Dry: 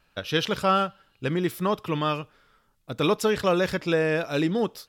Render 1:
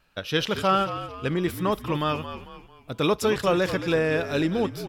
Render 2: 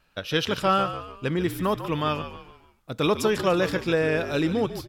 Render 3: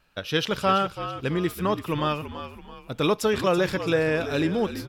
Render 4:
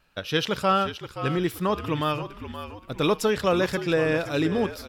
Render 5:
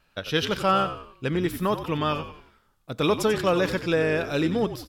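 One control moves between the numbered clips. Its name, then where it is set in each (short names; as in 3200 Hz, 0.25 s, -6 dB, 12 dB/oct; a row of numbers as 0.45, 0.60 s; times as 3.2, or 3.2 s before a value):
frequency-shifting echo, time: 223, 145, 332, 524, 91 ms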